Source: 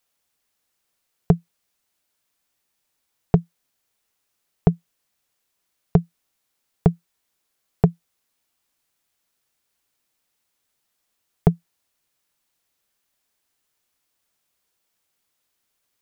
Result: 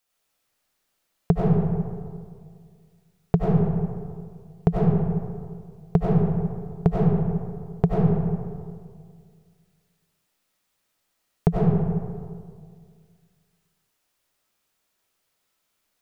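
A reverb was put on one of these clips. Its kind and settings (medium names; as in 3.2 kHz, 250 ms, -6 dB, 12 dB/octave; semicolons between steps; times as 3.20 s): algorithmic reverb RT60 2 s, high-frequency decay 0.45×, pre-delay 55 ms, DRR -5.5 dB; trim -3.5 dB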